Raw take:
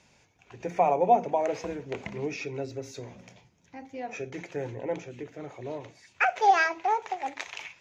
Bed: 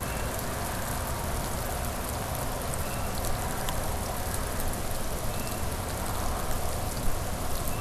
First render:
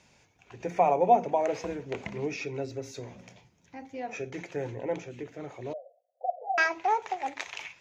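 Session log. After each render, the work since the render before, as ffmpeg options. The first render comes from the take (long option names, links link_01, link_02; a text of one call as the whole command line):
ffmpeg -i in.wav -filter_complex "[0:a]asettb=1/sr,asplit=3[link_01][link_02][link_03];[link_01]atrim=end=5.734[link_04];[link_02]atrim=start=5.73:end=6.58,asetpts=PTS-STARTPTS,afade=type=in:duration=0.004:curve=qsin,afade=type=out:start_time=0.846:duration=0.004:curve=qsin,asuperpass=centerf=600:order=12:qfactor=2.4[link_05];[link_03]atrim=start=6.576[link_06];[link_04][link_05]acrossfade=duration=0.004:curve1=hsin:curve2=qsin[link_07];[link_07][link_06]acrossfade=duration=0.004:curve1=qsin:curve2=hsin" out.wav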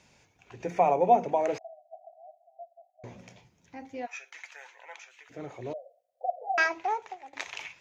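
ffmpeg -i in.wav -filter_complex "[0:a]asettb=1/sr,asplit=3[link_01][link_02][link_03];[link_01]atrim=end=1.584[link_04];[link_02]atrim=start=1.58:end=3.04,asetpts=PTS-STARTPTS,afade=type=in:duration=0.004:curve=qsin,afade=type=out:start_time=1.456:duration=0.004:curve=qsin,asuperpass=centerf=690:order=12:qfactor=4[link_05];[link_03]atrim=start=3.036[link_06];[link_04][link_05]acrossfade=duration=0.004:curve1=hsin:curve2=qsin[link_07];[link_07][link_06]acrossfade=duration=0.004:curve1=qsin:curve2=hsin,asplit=3[link_08][link_09][link_10];[link_08]afade=type=out:start_time=4.05:duration=0.02[link_11];[link_09]highpass=frequency=1000:width=0.5412,highpass=frequency=1000:width=1.3066,afade=type=in:start_time=4.05:duration=0.02,afade=type=out:start_time=5.29:duration=0.02[link_12];[link_10]afade=type=in:start_time=5.29:duration=0.02[link_13];[link_11][link_12][link_13]amix=inputs=3:normalize=0,asplit=2[link_14][link_15];[link_14]atrim=end=7.33,asetpts=PTS-STARTPTS,afade=type=out:start_time=6.66:duration=0.67:silence=0.0794328[link_16];[link_15]atrim=start=7.33,asetpts=PTS-STARTPTS,afade=type=in:duration=0.004:curve=hsin:silence=0.0794328[link_17];[link_16][link_17]concat=n=2:v=0:a=1" out.wav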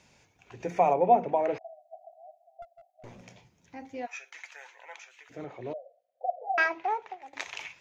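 ffmpeg -i in.wav -filter_complex "[0:a]asettb=1/sr,asplit=3[link_01][link_02][link_03];[link_01]atrim=end=0.934[link_04];[link_02]atrim=start=0.93:end=1.66,asetpts=PTS-STARTPTS,afade=type=in:duration=0.004:curve=qsin,afade=type=out:start_time=0.726:duration=0.004:curve=qsin,lowpass=2900[link_05];[link_03]atrim=start=1.656[link_06];[link_04][link_05]acrossfade=duration=0.004:curve1=hsin:curve2=qsin[link_07];[link_07][link_06]acrossfade=duration=0.004:curve1=qsin:curve2=hsin,asettb=1/sr,asplit=3[link_08][link_09][link_10];[link_08]atrim=end=2.624[link_11];[link_09]atrim=start=2.62:end=3.26,asetpts=PTS-STARTPTS,afade=type=in:duration=0.004:curve=qsin,afade=type=out:start_time=0.636:duration=0.004:curve=qsin,aeval=exprs='clip(val(0),-1,0.00335)':channel_layout=same[link_12];[link_10]atrim=start=3.256[link_13];[link_11][link_12]acrossfade=duration=0.004:curve1=hsin:curve2=qsin[link_14];[link_14][link_13]acrossfade=duration=0.004:curve1=qsin:curve2=hsin,asettb=1/sr,asplit=3[link_15][link_16][link_17];[link_15]atrim=end=5.444[link_18];[link_16]atrim=start=5.44:end=7.22,asetpts=PTS-STARTPTS,afade=type=in:duration=0.004:curve=qsin,afade=type=out:start_time=1.776:duration=0.004:curve=qsin,highpass=120,lowpass=3700[link_19];[link_17]atrim=start=7.216[link_20];[link_18][link_19]acrossfade=duration=0.004:curve1=hsin:curve2=qsin[link_21];[link_21][link_20]acrossfade=duration=0.004:curve1=qsin:curve2=hsin" out.wav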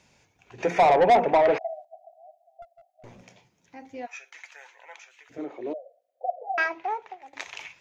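ffmpeg -i in.wav -filter_complex "[0:a]asettb=1/sr,asplit=3[link_01][link_02][link_03];[link_01]atrim=end=0.584[link_04];[link_02]atrim=start=0.58:end=1.85,asetpts=PTS-STARTPTS,afade=type=in:duration=0.004:curve=qsin,afade=type=out:start_time=1.266:duration=0.004:curve=qsin,asplit=2[link_05][link_06];[link_06]highpass=frequency=720:poles=1,volume=22dB,asoftclip=type=tanh:threshold=-10dB[link_07];[link_05][link_07]amix=inputs=2:normalize=0,lowpass=frequency=2400:poles=1,volume=-6dB[link_08];[link_03]atrim=start=1.846[link_09];[link_04][link_08]acrossfade=duration=0.004:curve1=hsin:curve2=qsin[link_10];[link_10][link_09]acrossfade=duration=0.004:curve1=qsin:curve2=hsin,asettb=1/sr,asplit=3[link_11][link_12][link_13];[link_11]atrim=end=3.234[link_14];[link_12]atrim=start=3.23:end=3.86,asetpts=PTS-STARTPTS,afade=type=in:duration=0.004:curve=qsin,afade=type=out:start_time=0.626:duration=0.004:curve=qsin,highpass=frequency=190:poles=1[link_15];[link_13]atrim=start=3.856[link_16];[link_14][link_15]acrossfade=duration=0.004:curve1=hsin:curve2=qsin[link_17];[link_17][link_16]acrossfade=duration=0.004:curve1=qsin:curve2=hsin,asettb=1/sr,asplit=3[link_18][link_19][link_20];[link_18]atrim=end=5.384[link_21];[link_19]atrim=start=5.38:end=6.43,asetpts=PTS-STARTPTS,afade=type=in:duration=0.004:curve=qsin,afade=type=out:start_time=1.046:duration=0.004:curve=qsin,highpass=frequency=310:width_type=q:width=2.8[link_22];[link_20]atrim=start=6.426[link_23];[link_21][link_22]acrossfade=duration=0.004:curve1=hsin:curve2=qsin[link_24];[link_24][link_23]acrossfade=duration=0.004:curve1=qsin:curve2=hsin" out.wav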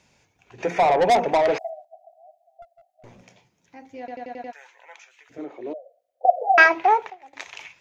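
ffmpeg -i in.wav -filter_complex "[0:a]asettb=1/sr,asplit=3[link_01][link_02][link_03];[link_01]atrim=end=0.994[link_04];[link_02]atrim=start=0.99:end=1.7,asetpts=PTS-STARTPTS,afade=type=in:duration=0.004:curve=qsin,afade=type=out:start_time=0.706:duration=0.004:curve=qsin,bass=frequency=250:gain=1,treble=frequency=4000:gain=13[link_05];[link_03]atrim=start=1.696[link_06];[link_04][link_05]acrossfade=duration=0.004:curve1=hsin:curve2=qsin[link_07];[link_07][link_06]acrossfade=duration=0.004:curve1=qsin:curve2=hsin,asplit=9[link_08][link_09][link_10][link_11][link_12][link_13][link_14][link_15][link_16];[link_08]atrim=end=4.082[link_17];[link_09]atrim=start=3.988:end=4.082[link_18];[link_10]atrim=start=3.988:end=4.082[link_19];[link_11]atrim=start=3.988:end=4.082[link_20];[link_12]atrim=start=3.988:end=4.082[link_21];[link_13]atrim=start=3.988:end=4.082[link_22];[link_14]atrim=start=4.528:end=6.252[link_23];[link_15]atrim=start=6.248:end=7.102,asetpts=PTS-STARTPTS,volume=12dB[link_24];[link_16]atrim=start=7.098[link_25];[link_17][link_18]acrossfade=duration=0.004:curve1=hsin:curve2=hsin[link_26];[link_26][link_19]acrossfade=duration=0.004:curve1=hsin:curve2=hsin[link_27];[link_27][link_20]acrossfade=duration=0.004:curve1=hsin:curve2=hsin[link_28];[link_28][link_21]acrossfade=duration=0.004:curve1=hsin:curve2=hsin[link_29];[link_29][link_22]acrossfade=duration=0.004:curve1=hsin:curve2=hsin[link_30];[link_30][link_23]acrossfade=duration=0.004:curve1=hsin:curve2=hsin[link_31];[link_31][link_24]acrossfade=duration=0.004:curve1=hsin:curve2=hsin[link_32];[link_32][link_25]acrossfade=duration=0.004:curve1=hsin:curve2=hsin" out.wav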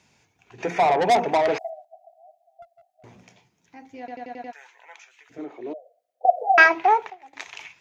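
ffmpeg -i in.wav -af "highpass=66,equalizer=frequency=550:width=7.4:gain=-8" out.wav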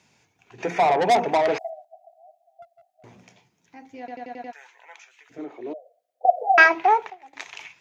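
ffmpeg -i in.wav -af "highpass=83" out.wav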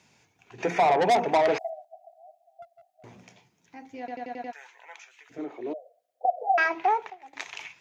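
ffmpeg -i in.wav -af "alimiter=limit=-14.5dB:level=0:latency=1:release=372" out.wav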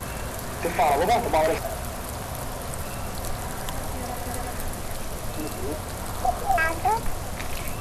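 ffmpeg -i in.wav -i bed.wav -filter_complex "[1:a]volume=-0.5dB[link_01];[0:a][link_01]amix=inputs=2:normalize=0" out.wav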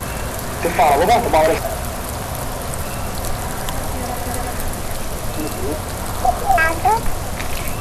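ffmpeg -i in.wav -af "volume=7.5dB" out.wav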